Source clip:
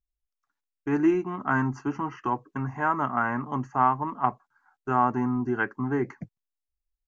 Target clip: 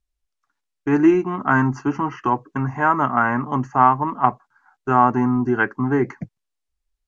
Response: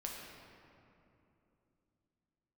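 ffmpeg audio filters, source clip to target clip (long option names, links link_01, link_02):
-af "lowpass=9700,volume=7.5dB"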